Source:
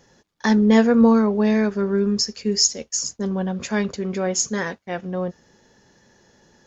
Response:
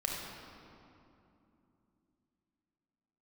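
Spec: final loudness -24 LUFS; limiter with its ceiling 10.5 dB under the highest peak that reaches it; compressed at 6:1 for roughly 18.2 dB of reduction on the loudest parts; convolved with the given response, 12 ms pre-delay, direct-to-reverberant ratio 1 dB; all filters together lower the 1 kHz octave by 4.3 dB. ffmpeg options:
-filter_complex "[0:a]equalizer=f=1000:t=o:g=-5.5,acompressor=threshold=0.0251:ratio=6,alimiter=level_in=1.58:limit=0.0631:level=0:latency=1,volume=0.631,asplit=2[s0][s1];[1:a]atrim=start_sample=2205,adelay=12[s2];[s1][s2]afir=irnorm=-1:irlink=0,volume=0.531[s3];[s0][s3]amix=inputs=2:normalize=0,volume=3.16"

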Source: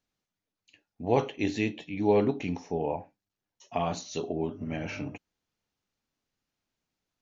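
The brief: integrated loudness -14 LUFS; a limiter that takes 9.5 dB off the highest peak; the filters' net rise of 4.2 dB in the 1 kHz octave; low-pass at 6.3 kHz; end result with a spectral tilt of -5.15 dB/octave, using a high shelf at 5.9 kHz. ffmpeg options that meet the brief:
-af "lowpass=6300,equalizer=f=1000:t=o:g=5.5,highshelf=f=5900:g=7.5,volume=8.41,alimiter=limit=1:level=0:latency=1"

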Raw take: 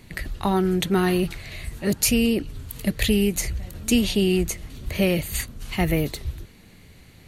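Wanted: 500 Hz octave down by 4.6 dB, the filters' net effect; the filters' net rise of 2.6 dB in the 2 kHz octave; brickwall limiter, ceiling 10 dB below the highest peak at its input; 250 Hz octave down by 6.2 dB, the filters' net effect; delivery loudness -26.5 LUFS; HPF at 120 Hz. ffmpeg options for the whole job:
-af "highpass=120,equalizer=f=250:t=o:g=-7.5,equalizer=f=500:t=o:g=-3,equalizer=f=2000:t=o:g=3.5,volume=1.33,alimiter=limit=0.188:level=0:latency=1"

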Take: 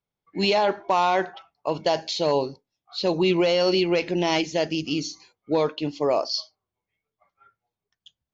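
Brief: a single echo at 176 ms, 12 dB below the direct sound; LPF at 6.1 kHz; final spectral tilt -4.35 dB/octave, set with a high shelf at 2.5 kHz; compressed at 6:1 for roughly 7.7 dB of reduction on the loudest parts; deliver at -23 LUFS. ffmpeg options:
-af "lowpass=6100,highshelf=f=2500:g=-9,acompressor=threshold=0.0501:ratio=6,aecho=1:1:176:0.251,volume=2.66"

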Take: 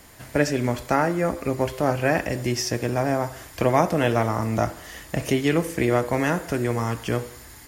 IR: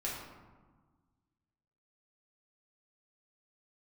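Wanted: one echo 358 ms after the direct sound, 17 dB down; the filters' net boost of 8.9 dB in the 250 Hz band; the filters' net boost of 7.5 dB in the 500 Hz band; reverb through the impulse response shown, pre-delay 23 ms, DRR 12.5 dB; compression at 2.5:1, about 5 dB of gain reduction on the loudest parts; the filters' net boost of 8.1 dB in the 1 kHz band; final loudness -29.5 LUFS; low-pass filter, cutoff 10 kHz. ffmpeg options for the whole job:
-filter_complex "[0:a]lowpass=10000,equalizer=f=250:t=o:g=9,equalizer=f=500:t=o:g=4.5,equalizer=f=1000:t=o:g=8.5,acompressor=threshold=0.178:ratio=2.5,aecho=1:1:358:0.141,asplit=2[s0][s1];[1:a]atrim=start_sample=2205,adelay=23[s2];[s1][s2]afir=irnorm=-1:irlink=0,volume=0.168[s3];[s0][s3]amix=inputs=2:normalize=0,volume=0.335"

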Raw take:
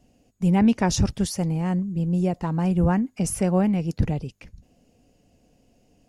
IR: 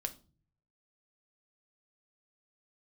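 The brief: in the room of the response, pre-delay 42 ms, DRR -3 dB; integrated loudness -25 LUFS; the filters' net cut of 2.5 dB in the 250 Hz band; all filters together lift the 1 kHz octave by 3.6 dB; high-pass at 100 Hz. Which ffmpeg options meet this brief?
-filter_complex "[0:a]highpass=100,equalizer=f=250:t=o:g=-3.5,equalizer=f=1000:t=o:g=5,asplit=2[s0][s1];[1:a]atrim=start_sample=2205,adelay=42[s2];[s1][s2]afir=irnorm=-1:irlink=0,volume=1.5[s3];[s0][s3]amix=inputs=2:normalize=0,volume=0.631"

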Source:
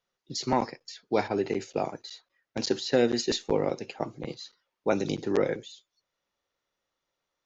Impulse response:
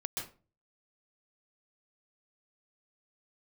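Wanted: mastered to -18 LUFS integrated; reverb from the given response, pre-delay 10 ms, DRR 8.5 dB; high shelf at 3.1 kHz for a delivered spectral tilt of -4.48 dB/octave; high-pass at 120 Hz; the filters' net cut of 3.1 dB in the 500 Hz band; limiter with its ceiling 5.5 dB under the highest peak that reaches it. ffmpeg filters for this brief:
-filter_complex "[0:a]highpass=120,equalizer=f=500:t=o:g=-3.5,highshelf=f=3100:g=-8,alimiter=limit=0.119:level=0:latency=1,asplit=2[s0][s1];[1:a]atrim=start_sample=2205,adelay=10[s2];[s1][s2]afir=irnorm=-1:irlink=0,volume=0.316[s3];[s0][s3]amix=inputs=2:normalize=0,volume=5.96"

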